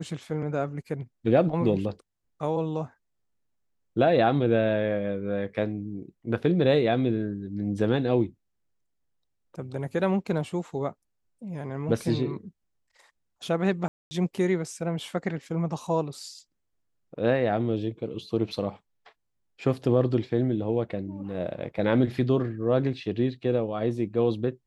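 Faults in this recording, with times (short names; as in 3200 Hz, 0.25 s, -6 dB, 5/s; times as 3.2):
13.88–14.11 gap 0.23 s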